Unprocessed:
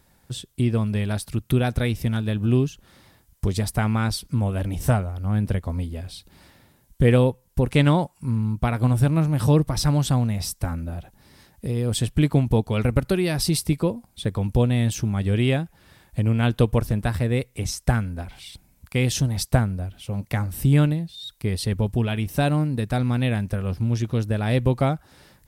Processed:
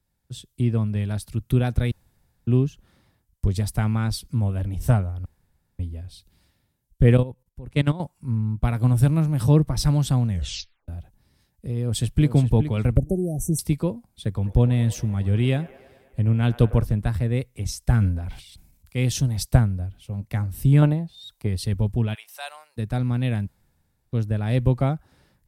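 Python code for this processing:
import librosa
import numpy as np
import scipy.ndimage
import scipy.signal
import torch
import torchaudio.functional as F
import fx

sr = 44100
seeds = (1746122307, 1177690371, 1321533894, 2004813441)

y = fx.level_steps(x, sr, step_db=16, at=(7.17, 8.0))
y = fx.high_shelf(y, sr, hz=4900.0, db=6.0, at=(8.63, 9.43))
y = fx.echo_throw(y, sr, start_s=11.76, length_s=0.58, ms=420, feedback_pct=15, wet_db=-10.0)
y = fx.brickwall_bandstop(y, sr, low_hz=790.0, high_hz=5700.0, at=(12.97, 13.59))
y = fx.echo_wet_bandpass(y, sr, ms=104, feedback_pct=82, hz=960.0, wet_db=-14.0, at=(14.42, 16.83), fade=0.02)
y = fx.transient(y, sr, attack_db=-2, sustain_db=10, at=(17.82, 18.98))
y = fx.peak_eq(y, sr, hz=800.0, db=10.5, octaves=1.5, at=(20.82, 21.47))
y = fx.cheby2_highpass(y, sr, hz=280.0, order=4, stop_db=50, at=(22.13, 22.76), fade=0.02)
y = fx.edit(y, sr, fx.room_tone_fill(start_s=1.91, length_s=0.56),
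    fx.room_tone_fill(start_s=5.25, length_s=0.54),
    fx.tape_stop(start_s=10.28, length_s=0.6),
    fx.room_tone_fill(start_s=23.47, length_s=0.65), tone=tone)
y = fx.low_shelf(y, sr, hz=200.0, db=8.0)
y = fx.band_widen(y, sr, depth_pct=40)
y = y * 10.0 ** (-5.0 / 20.0)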